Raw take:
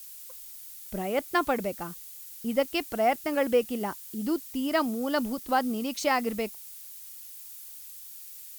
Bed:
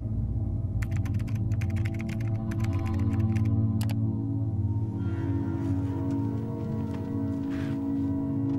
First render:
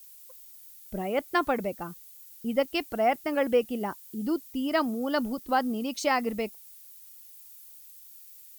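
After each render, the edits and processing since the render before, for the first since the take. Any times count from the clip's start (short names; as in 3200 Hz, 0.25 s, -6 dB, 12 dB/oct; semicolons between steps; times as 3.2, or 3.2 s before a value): denoiser 8 dB, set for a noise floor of -45 dBFS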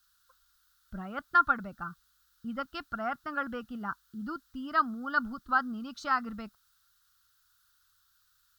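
EQ curve 120 Hz 0 dB, 230 Hz -6 dB, 450 Hz -20 dB, 920 Hz -7 dB, 1400 Hz +12 dB, 2200 Hz -18 dB, 3800 Hz -5 dB, 8300 Hz -19 dB, 13000 Hz -22 dB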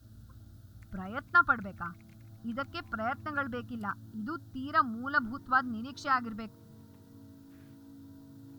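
add bed -23 dB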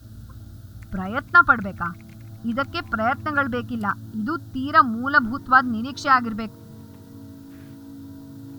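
gain +11.5 dB; limiter -3 dBFS, peak gain reduction 2.5 dB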